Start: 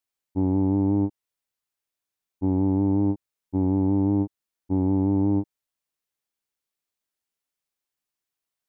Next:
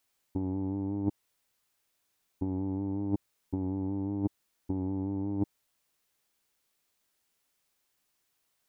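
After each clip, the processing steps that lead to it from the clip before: compressor with a negative ratio -32 dBFS, ratio -1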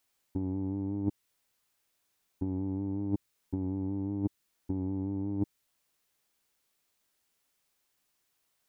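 dynamic bell 760 Hz, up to -5 dB, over -51 dBFS, Q 0.96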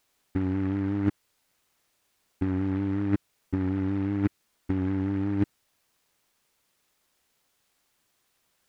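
delay time shaken by noise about 1.3 kHz, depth 0.056 ms; trim +6 dB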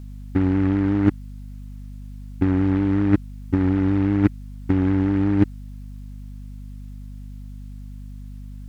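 hum 50 Hz, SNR 13 dB; trim +8 dB

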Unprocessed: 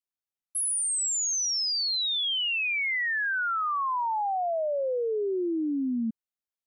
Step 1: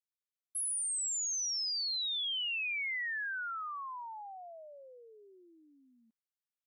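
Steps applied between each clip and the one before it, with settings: high-pass 1.5 kHz 12 dB/octave; trim -7 dB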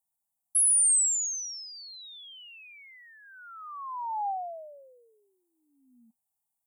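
FFT filter 240 Hz 0 dB, 340 Hz -27 dB, 800 Hz +9 dB, 1.7 kHz -25 dB, 4.9 kHz -17 dB, 8.3 kHz +5 dB; trim +8 dB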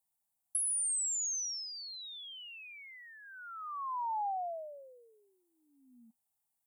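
compression, threshold -33 dBFS, peak gain reduction 11 dB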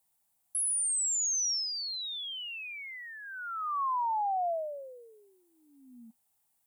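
peak limiter -35.5 dBFS, peak gain reduction 10 dB; trim +8.5 dB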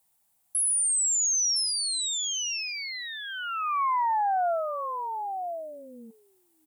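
delay 1013 ms -7.5 dB; trim +5 dB

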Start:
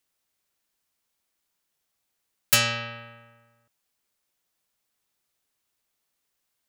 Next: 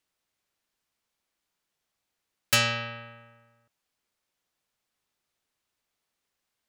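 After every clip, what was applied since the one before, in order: treble shelf 7.9 kHz -10 dB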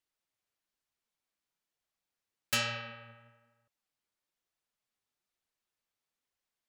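flange 1.1 Hz, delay 0.9 ms, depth 9.4 ms, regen +50%; trim -4 dB

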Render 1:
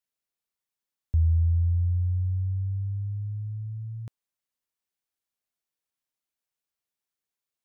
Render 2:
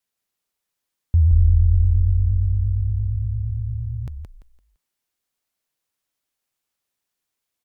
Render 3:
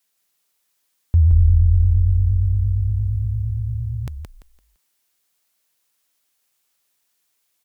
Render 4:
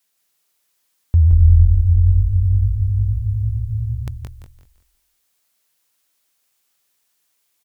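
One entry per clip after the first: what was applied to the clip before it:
vibrato 8.7 Hz 99 cents; on a send: frequency-shifting echo 170 ms, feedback 31%, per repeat -41 Hz, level -4 dB; on the sum: trim +6.5 dB
tilt EQ +1.5 dB/octave; trim +7 dB
feedback delay 192 ms, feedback 26%, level -8.5 dB; trim +1.5 dB

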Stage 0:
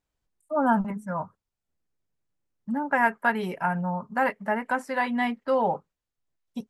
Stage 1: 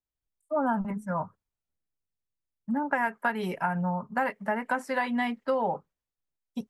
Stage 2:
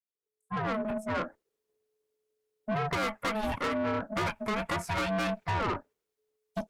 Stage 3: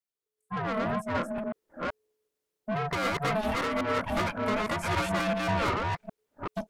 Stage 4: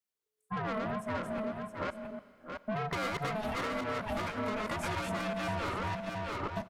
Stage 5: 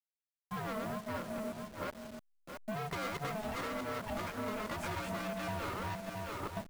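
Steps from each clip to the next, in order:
compression 6:1, threshold -26 dBFS, peak gain reduction 9.5 dB; three bands expanded up and down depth 40%; trim +2 dB
fade-in on the opening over 1.25 s; ring modulator 430 Hz; valve stage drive 35 dB, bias 0.25; trim +8.5 dB
chunks repeated in reverse 381 ms, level -0.5 dB
delay 669 ms -9.5 dB; Schroeder reverb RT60 2 s, combs from 33 ms, DRR 17 dB; compression, threshold -32 dBFS, peak gain reduction 8.5 dB
send-on-delta sampling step -42 dBFS; trim -3.5 dB

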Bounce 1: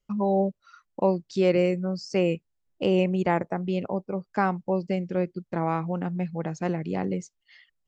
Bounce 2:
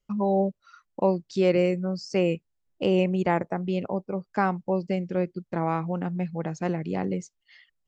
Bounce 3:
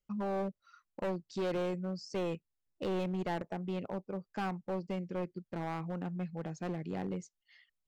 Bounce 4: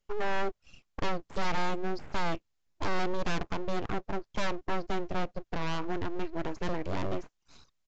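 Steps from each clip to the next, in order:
no audible change
overload inside the chain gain 22 dB; trim -8.5 dB
full-wave rectifier; resampled via 16 kHz; trim +8.5 dB

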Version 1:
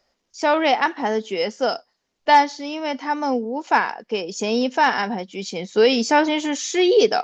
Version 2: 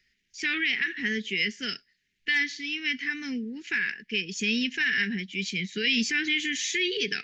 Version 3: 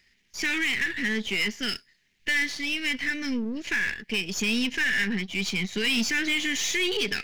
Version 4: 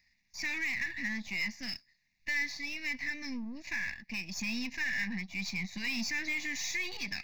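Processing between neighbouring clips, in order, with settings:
FFT filter 130 Hz 0 dB, 410 Hz +5 dB, 590 Hz -24 dB, 920 Hz -22 dB, 1.7 kHz +13 dB, 5 kHz -4 dB; peak limiter -11.5 dBFS, peak gain reduction 10.5 dB; high-order bell 640 Hz -14.5 dB 2.9 oct
partial rectifier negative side -7 dB; in parallel at -2 dB: compression, threshold -36 dBFS, peak gain reduction 13 dB; on the sum: saturation -22 dBFS, distortion -13 dB; trim +4 dB
static phaser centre 2.1 kHz, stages 8; trim -6 dB

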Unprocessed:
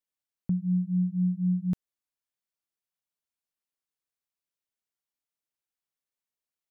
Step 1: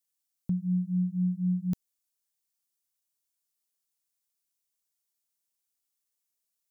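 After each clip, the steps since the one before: tone controls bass +1 dB, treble +13 dB; trim -2.5 dB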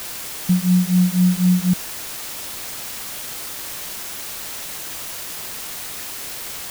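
harmonic-percussive split harmonic +7 dB; word length cut 6-bit, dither triangular; trim +5 dB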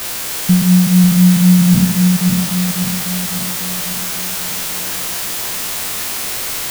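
spectral sustain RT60 0.82 s; two-band feedback delay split 330 Hz, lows 547 ms, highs 288 ms, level -5.5 dB; trim +5.5 dB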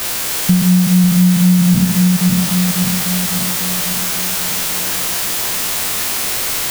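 compression 2.5:1, threshold -13 dBFS, peak gain reduction 5.5 dB; trim +3 dB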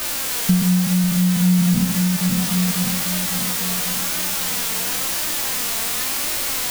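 flange 0.95 Hz, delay 3.2 ms, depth 1.3 ms, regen +43%

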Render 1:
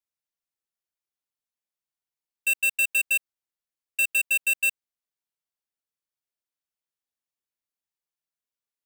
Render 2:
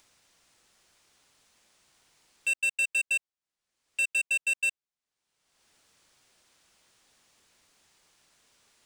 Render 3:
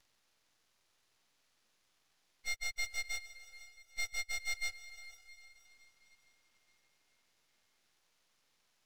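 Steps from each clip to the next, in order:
upward compressor, threshold -33 dBFS; Savitzky-Golay filter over 9 samples; trim -3.5 dB
frequency axis rescaled in octaves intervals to 90%; echo that smears into a reverb 469 ms, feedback 44%, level -14.5 dB; half-wave rectifier; trim -4 dB

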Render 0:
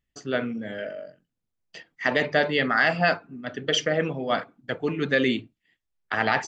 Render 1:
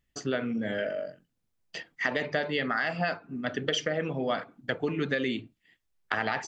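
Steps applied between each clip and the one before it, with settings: compression 6:1, threshold -30 dBFS, peak gain reduction 13 dB; trim +4 dB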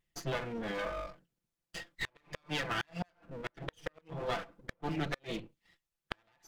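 comb filter that takes the minimum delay 5.9 ms; wow and flutter 27 cents; inverted gate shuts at -19 dBFS, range -37 dB; trim -3 dB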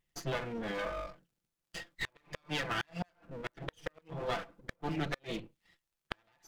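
crackle 52 per s -68 dBFS

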